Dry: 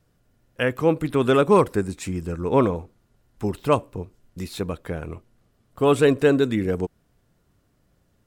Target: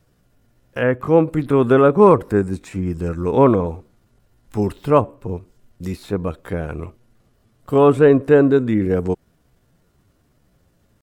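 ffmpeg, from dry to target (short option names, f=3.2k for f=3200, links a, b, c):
-filter_complex "[0:a]acrossover=split=1900[a][b];[b]acompressor=threshold=-49dB:ratio=5[c];[a][c]amix=inputs=2:normalize=0,atempo=0.75,volume=5dB"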